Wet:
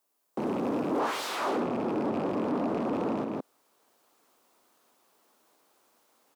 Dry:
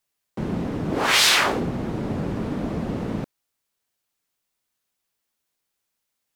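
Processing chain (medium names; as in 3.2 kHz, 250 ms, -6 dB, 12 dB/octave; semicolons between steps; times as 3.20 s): rattle on loud lows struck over -26 dBFS, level -26 dBFS; delay 161 ms -13.5 dB; level rider gain up to 15.5 dB; treble shelf 6.6 kHz +8.5 dB, from 0.99 s -2 dB; compression, threshold -18 dBFS, peak gain reduction 9 dB; saturation -25 dBFS, distortion -9 dB; peak limiter -30 dBFS, peak gain reduction 5 dB; high-pass 140 Hz 12 dB/octave; high-order bell 550 Hz +11.5 dB 2.8 oct; trim -5 dB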